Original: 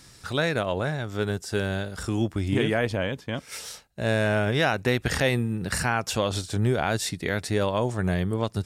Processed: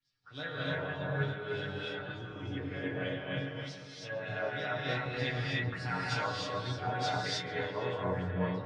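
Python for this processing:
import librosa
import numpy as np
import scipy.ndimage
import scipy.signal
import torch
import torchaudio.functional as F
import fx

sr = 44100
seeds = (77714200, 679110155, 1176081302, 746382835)

p1 = fx.high_shelf(x, sr, hz=8100.0, db=-9.5)
p2 = p1 + 0.65 * np.pad(p1, (int(6.6 * sr / 1000.0), 0))[:len(p1)]
p3 = fx.rider(p2, sr, range_db=4, speed_s=0.5)
p4 = fx.resonator_bank(p3, sr, root=42, chord='sus4', decay_s=0.32)
p5 = fx.filter_lfo_lowpass(p4, sr, shape='sine', hz=3.3, low_hz=890.0, high_hz=5100.0, q=2.6)
p6 = p5 + fx.echo_filtered(p5, sr, ms=454, feedback_pct=53, hz=2300.0, wet_db=-9, dry=0)
p7 = fx.rev_gated(p6, sr, seeds[0], gate_ms=340, shape='rising', drr_db=-4.5)
p8 = fx.band_widen(p7, sr, depth_pct=70)
y = F.gain(torch.from_numpy(p8), -4.5).numpy()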